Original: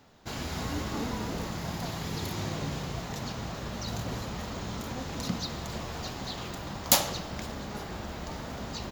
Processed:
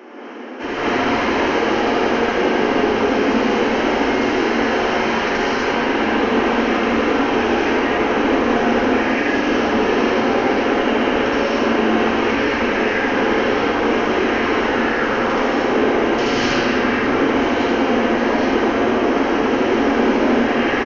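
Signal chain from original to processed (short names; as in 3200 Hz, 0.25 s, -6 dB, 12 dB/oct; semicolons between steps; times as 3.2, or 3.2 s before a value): elliptic high-pass 540 Hz; high shelf 5900 Hz +7.5 dB; notch 1500 Hz, Q 11; in parallel at +2.5 dB: negative-ratio compressor -42 dBFS; on the sum: overdrive pedal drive 29 dB, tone 1500 Hz, clips at -5.5 dBFS; doubler 33 ms -3 dB; non-linear reverb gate 0.12 s rising, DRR -6 dB; downsampling 32000 Hz; speed mistake 78 rpm record played at 33 rpm; gain -6 dB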